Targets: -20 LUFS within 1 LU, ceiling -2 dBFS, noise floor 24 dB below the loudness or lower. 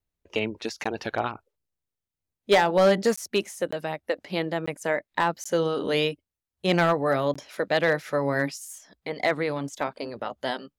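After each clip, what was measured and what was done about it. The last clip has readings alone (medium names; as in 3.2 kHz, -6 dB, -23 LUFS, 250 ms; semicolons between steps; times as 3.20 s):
clipped samples 0.4%; clipping level -13.0 dBFS; dropouts 6; longest dropout 15 ms; loudness -26.5 LUFS; peak level -13.0 dBFS; loudness target -20.0 LUFS
-> clip repair -13 dBFS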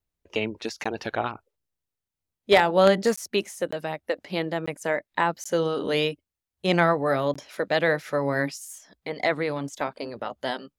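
clipped samples 0.0%; dropouts 6; longest dropout 15 ms
-> interpolate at 0.84/3.16/3.71/4.66/5.44/7.34 s, 15 ms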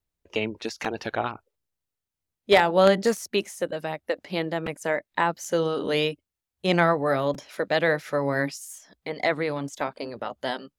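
dropouts 0; loudness -25.5 LUFS; peak level -4.0 dBFS; loudness target -20.0 LUFS
-> trim +5.5 dB; peak limiter -2 dBFS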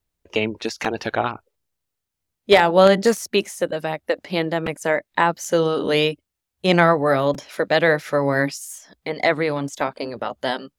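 loudness -20.5 LUFS; peak level -2.0 dBFS; noise floor -81 dBFS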